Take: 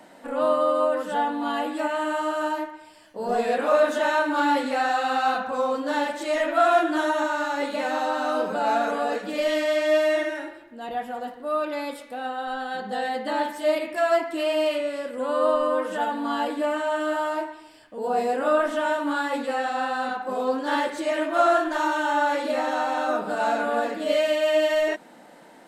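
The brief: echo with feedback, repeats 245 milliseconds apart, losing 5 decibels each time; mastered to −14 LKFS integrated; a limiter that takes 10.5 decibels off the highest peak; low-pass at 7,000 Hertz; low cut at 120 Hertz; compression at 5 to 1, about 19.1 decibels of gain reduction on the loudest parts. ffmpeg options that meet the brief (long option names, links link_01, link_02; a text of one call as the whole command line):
ffmpeg -i in.wav -af "highpass=120,lowpass=7000,acompressor=threshold=-38dB:ratio=5,alimiter=level_in=12dB:limit=-24dB:level=0:latency=1,volume=-12dB,aecho=1:1:245|490|735|980|1225|1470|1715:0.562|0.315|0.176|0.0988|0.0553|0.031|0.0173,volume=28dB" out.wav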